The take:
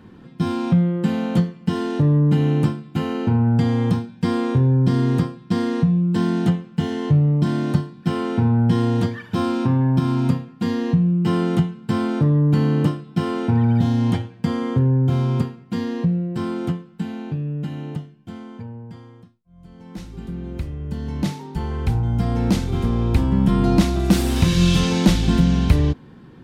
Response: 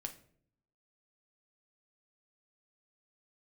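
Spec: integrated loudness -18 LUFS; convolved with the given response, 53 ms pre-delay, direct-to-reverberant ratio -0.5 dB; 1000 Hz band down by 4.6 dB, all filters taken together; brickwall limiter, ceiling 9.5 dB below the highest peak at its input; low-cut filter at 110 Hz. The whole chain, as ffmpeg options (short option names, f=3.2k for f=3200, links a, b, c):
-filter_complex "[0:a]highpass=110,equalizer=f=1k:t=o:g=-6,alimiter=limit=-12dB:level=0:latency=1,asplit=2[a][b];[1:a]atrim=start_sample=2205,adelay=53[c];[b][c]afir=irnorm=-1:irlink=0,volume=3dB[d];[a][d]amix=inputs=2:normalize=0"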